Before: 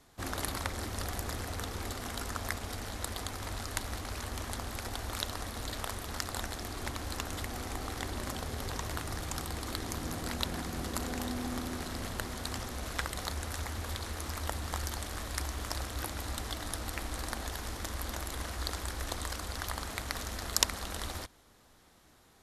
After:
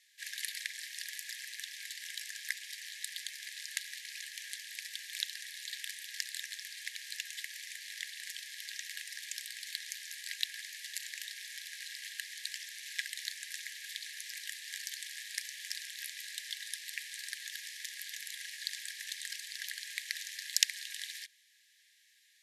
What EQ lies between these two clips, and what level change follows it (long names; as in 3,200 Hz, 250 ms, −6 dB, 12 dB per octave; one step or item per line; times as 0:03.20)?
linear-phase brick-wall high-pass 1,600 Hz
high-shelf EQ 8,600 Hz −7 dB
+2.0 dB